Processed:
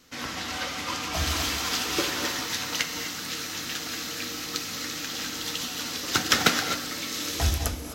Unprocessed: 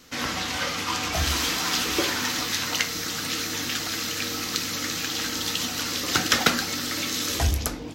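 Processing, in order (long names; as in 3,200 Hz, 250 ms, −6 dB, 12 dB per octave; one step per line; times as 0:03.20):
reverb whose tail is shaped and stops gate 280 ms rising, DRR 4 dB
expander for the loud parts 1.5 to 1, over −28 dBFS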